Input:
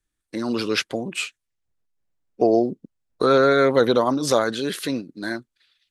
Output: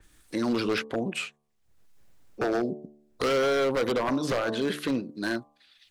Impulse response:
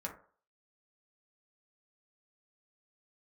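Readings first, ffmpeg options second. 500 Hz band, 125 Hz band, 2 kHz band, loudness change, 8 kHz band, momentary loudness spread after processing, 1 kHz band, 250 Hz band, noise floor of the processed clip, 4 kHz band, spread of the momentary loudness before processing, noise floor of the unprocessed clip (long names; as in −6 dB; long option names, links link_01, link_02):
−7.5 dB, −5.5 dB, −4.5 dB, −7.0 dB, −9.0 dB, 9 LU, −7.5 dB, −5.0 dB, −69 dBFS, −6.0 dB, 14 LU, −81 dBFS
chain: -filter_complex "[0:a]bandreject=frequency=73.59:width_type=h:width=4,bandreject=frequency=147.18:width_type=h:width=4,bandreject=frequency=220.77:width_type=h:width=4,bandreject=frequency=294.36:width_type=h:width=4,bandreject=frequency=367.95:width_type=h:width=4,bandreject=frequency=441.54:width_type=h:width=4,bandreject=frequency=515.13:width_type=h:width=4,bandreject=frequency=588.72:width_type=h:width=4,bandreject=frequency=662.31:width_type=h:width=4,bandreject=frequency=735.9:width_type=h:width=4,bandreject=frequency=809.49:width_type=h:width=4,bandreject=frequency=883.08:width_type=h:width=4,bandreject=frequency=956.67:width_type=h:width=4,bandreject=frequency=1030.26:width_type=h:width=4,bandreject=frequency=1103.85:width_type=h:width=4,bandreject=frequency=1177.44:width_type=h:width=4,acrossover=split=1500|3400[link_01][link_02][link_03];[link_01]acompressor=threshold=-21dB:ratio=4[link_04];[link_02]acompressor=threshold=-34dB:ratio=4[link_05];[link_03]acompressor=threshold=-38dB:ratio=4[link_06];[link_04][link_05][link_06]amix=inputs=3:normalize=0,aeval=exprs='0.106*(abs(mod(val(0)/0.106+3,4)-2)-1)':channel_layout=same,acompressor=mode=upward:threshold=-39dB:ratio=2.5,adynamicequalizer=threshold=0.00501:dfrequency=3500:dqfactor=0.7:tfrequency=3500:tqfactor=0.7:attack=5:release=100:ratio=0.375:range=3:mode=cutabove:tftype=highshelf"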